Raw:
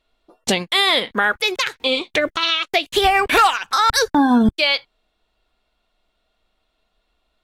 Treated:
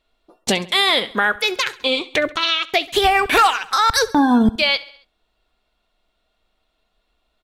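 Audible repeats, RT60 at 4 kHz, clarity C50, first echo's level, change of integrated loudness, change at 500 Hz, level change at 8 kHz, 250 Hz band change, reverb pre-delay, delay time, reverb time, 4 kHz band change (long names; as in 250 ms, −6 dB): 3, no reverb audible, no reverb audible, −20.0 dB, 0.0 dB, 0.0 dB, 0.0 dB, 0.0 dB, no reverb audible, 68 ms, no reverb audible, 0.0 dB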